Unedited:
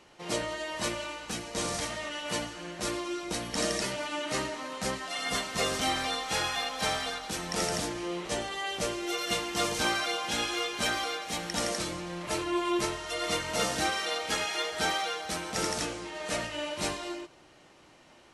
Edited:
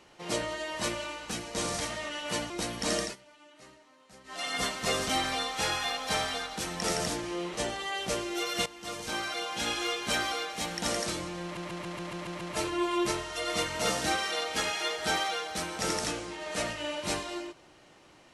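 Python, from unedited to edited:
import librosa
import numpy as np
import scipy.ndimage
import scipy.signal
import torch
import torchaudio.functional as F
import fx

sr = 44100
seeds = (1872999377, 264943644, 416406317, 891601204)

y = fx.edit(x, sr, fx.cut(start_s=2.5, length_s=0.72),
    fx.fade_down_up(start_s=3.73, length_s=1.38, db=-22.0, fade_s=0.15),
    fx.fade_in_from(start_s=9.38, length_s=1.16, floor_db=-15.5),
    fx.stutter(start_s=12.15, slice_s=0.14, count=8), tone=tone)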